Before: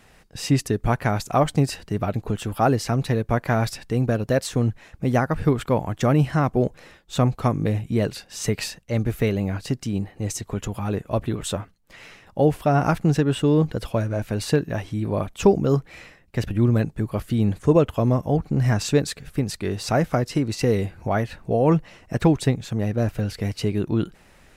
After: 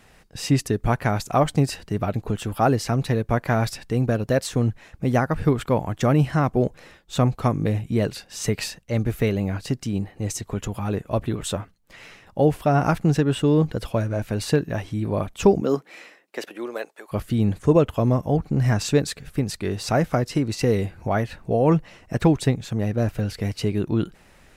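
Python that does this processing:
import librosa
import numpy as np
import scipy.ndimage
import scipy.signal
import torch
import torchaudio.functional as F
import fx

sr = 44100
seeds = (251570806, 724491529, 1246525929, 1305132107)

y = fx.highpass(x, sr, hz=fx.line((15.6, 180.0), (17.11, 590.0)), slope=24, at=(15.6, 17.11), fade=0.02)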